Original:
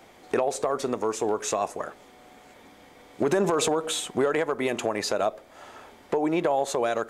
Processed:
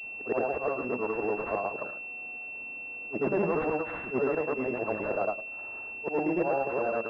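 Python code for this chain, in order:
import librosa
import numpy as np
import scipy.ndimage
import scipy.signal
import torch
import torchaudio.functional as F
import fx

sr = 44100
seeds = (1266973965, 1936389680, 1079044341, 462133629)

y = fx.frame_reverse(x, sr, frame_ms=220.0)
y = fx.pwm(y, sr, carrier_hz=2700.0)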